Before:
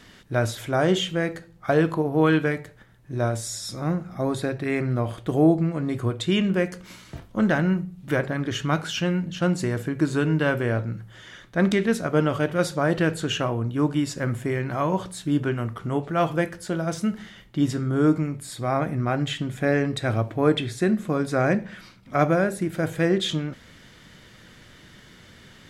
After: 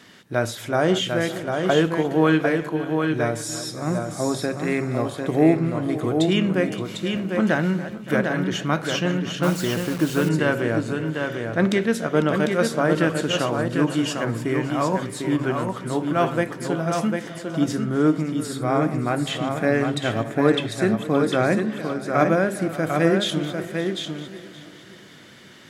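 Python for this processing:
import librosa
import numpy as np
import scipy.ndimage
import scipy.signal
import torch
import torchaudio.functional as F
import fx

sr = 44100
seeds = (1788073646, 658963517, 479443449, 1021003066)

y = fx.reverse_delay_fb(x, sr, ms=285, feedback_pct=59, wet_db=-14.0)
y = scipy.signal.sosfilt(scipy.signal.butter(2, 150.0, 'highpass', fs=sr, output='sos'), y)
y = y + 10.0 ** (-5.0 / 20.0) * np.pad(y, (int(749 * sr / 1000.0), 0))[:len(y)]
y = fx.quant_dither(y, sr, seeds[0], bits=6, dither='none', at=(9.43, 10.29))
y = fx.end_taper(y, sr, db_per_s=320.0)
y = y * 10.0 ** (1.5 / 20.0)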